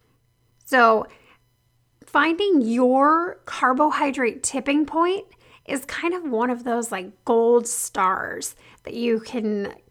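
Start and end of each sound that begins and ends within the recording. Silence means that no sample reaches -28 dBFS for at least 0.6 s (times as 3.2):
0.71–1.03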